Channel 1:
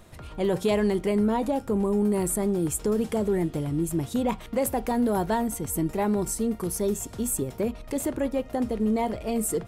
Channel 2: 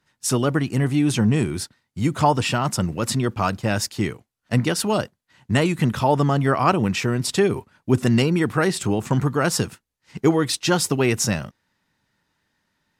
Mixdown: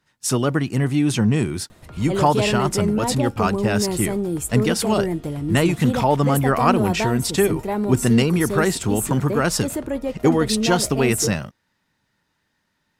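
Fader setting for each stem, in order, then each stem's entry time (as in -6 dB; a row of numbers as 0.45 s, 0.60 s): +1.5 dB, +0.5 dB; 1.70 s, 0.00 s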